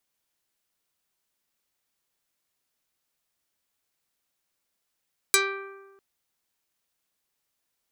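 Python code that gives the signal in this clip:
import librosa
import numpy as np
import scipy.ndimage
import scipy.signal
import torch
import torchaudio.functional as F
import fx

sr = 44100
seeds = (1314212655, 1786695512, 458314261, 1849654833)

y = fx.pluck(sr, length_s=0.65, note=67, decay_s=1.29, pick=0.43, brightness='dark')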